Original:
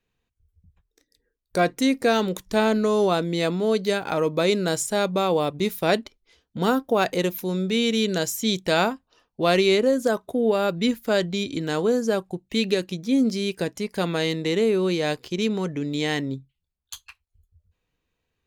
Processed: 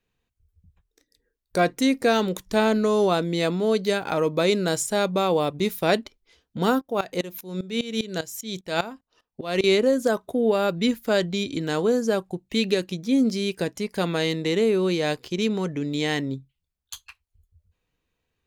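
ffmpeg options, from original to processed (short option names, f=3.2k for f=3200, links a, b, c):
-filter_complex "[0:a]asettb=1/sr,asplit=3[a][b][c];[a]atrim=end=6.814[d];[b]atrim=start=6.81:end=9.64,asetpts=PTS-STARTPTS,afade=t=in:d=0.004:c=qsin,afade=t=out:st=2.826:d=0.004:c=qsin,aeval=exprs='val(0)*pow(10,-18*if(lt(mod(-5*n/s,1),2*abs(-5)/1000),1-mod(-5*n/s,1)/(2*abs(-5)/1000),(mod(-5*n/s,1)-2*abs(-5)/1000)/(1-2*abs(-5)/1000))/20)':c=same[e];[c]atrim=start=9.636[f];[d][e]acrossfade=d=0.004:c1=hsin:c2=qsin[g];[g][f]acrossfade=d=0.004:c1=qsin:c2=hsin"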